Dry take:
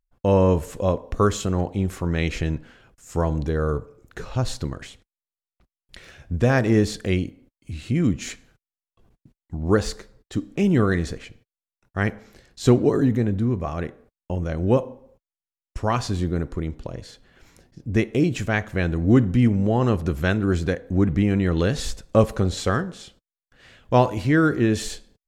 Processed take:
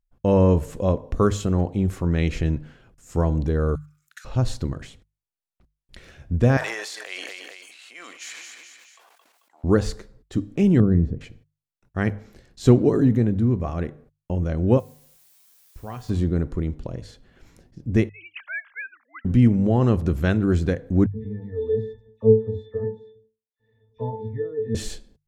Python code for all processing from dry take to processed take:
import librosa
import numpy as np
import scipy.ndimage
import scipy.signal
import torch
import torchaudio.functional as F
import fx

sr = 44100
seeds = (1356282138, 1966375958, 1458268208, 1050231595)

y = fx.chain(x, sr, fx.steep_highpass(hz=1300.0, slope=48),
    fx.high_shelf(hz=4400.0, db=11.0),
    fx.level_steps(step_db=9), at=(3.75, 4.25))
y = fx.chain(y, sr, fx.highpass(hz=800.0, slope=24),
    fx.echo_feedback(ms=220, feedback_pct=33, wet_db=-15.5),
    fx.sustainer(db_per_s=25.0), at=(6.57, 9.64))
y = fx.chain(y, sr, fx.bandpass_q(hz=180.0, q=0.74),
    fx.low_shelf(hz=130.0, db=10.5), at=(10.8, 11.21))
y = fx.dmg_noise_colour(y, sr, seeds[0], colour='blue', level_db=-41.0, at=(14.79, 16.08), fade=0.02)
y = fx.comb_fb(y, sr, f0_hz=150.0, decay_s=0.63, harmonics='odd', damping=0.0, mix_pct=80, at=(14.79, 16.08), fade=0.02)
y = fx.chain(y, sr, fx.sine_speech(),
    fx.highpass(hz=1300.0, slope=24), at=(18.09, 19.25))
y = fx.chain(y, sr, fx.octave_resonator(note='A', decay_s=0.3),
    fx.small_body(hz=(440.0, 660.0), ring_ms=90, db=15),
    fx.dispersion(late='lows', ms=78.0, hz=1900.0), at=(21.06, 24.75))
y = fx.low_shelf(y, sr, hz=460.0, db=7.5)
y = fx.hum_notches(y, sr, base_hz=50, count=3)
y = y * librosa.db_to_amplitude(-4.0)